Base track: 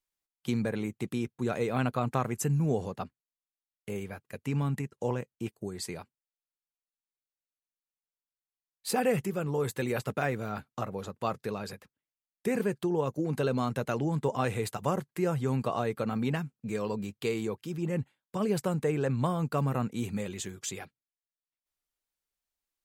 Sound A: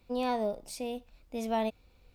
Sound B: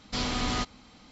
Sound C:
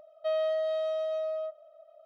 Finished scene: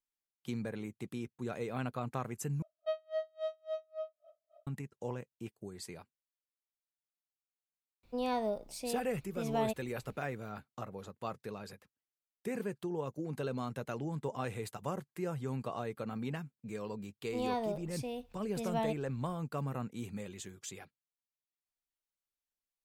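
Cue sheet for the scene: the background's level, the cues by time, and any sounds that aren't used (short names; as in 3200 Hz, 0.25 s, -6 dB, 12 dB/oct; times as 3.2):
base track -8.5 dB
2.62 replace with C -2.5 dB + dB-linear tremolo 3.6 Hz, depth 39 dB
8.03 add A -3 dB
17.23 add A -4 dB + notch 580 Hz
not used: B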